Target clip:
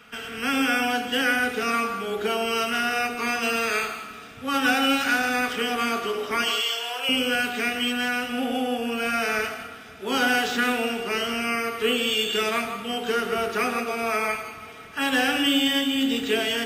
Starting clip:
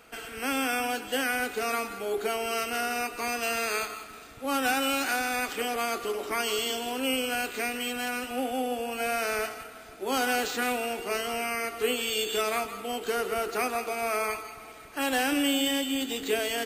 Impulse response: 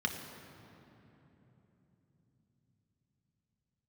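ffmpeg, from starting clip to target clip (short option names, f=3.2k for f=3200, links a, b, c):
-filter_complex "[0:a]asettb=1/sr,asplit=3[a][b][c];[a]atrim=end=6.434[d];[b]atrim=start=6.43:end=7.09,asetpts=PTS-STARTPTS,afade=t=in:d=0.004:c=qsin,afade=t=out:st=0.656:d=0.004:c=qsin,highpass=f=560:w=0.5412,highpass=f=560:w=1.3066[e];[c]atrim=start=7.086[f];[d][e]acrossfade=d=0.004:c1=hsin:c2=qsin[g];[g][f]acrossfade=d=0.004:c1=qsin:c2=hsin[h];[1:a]atrim=start_sample=2205,afade=t=out:st=0.23:d=0.01,atrim=end_sample=10584[i];[h][i]afir=irnorm=-1:irlink=0"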